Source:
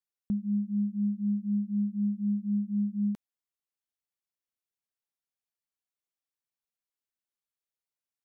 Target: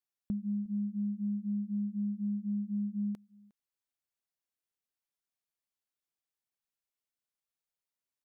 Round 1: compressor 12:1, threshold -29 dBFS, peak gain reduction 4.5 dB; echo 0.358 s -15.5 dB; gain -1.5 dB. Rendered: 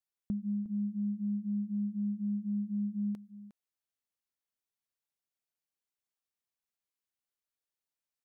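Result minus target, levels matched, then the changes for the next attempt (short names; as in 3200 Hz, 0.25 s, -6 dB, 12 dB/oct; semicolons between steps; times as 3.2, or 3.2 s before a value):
echo-to-direct +10 dB
change: echo 0.358 s -25.5 dB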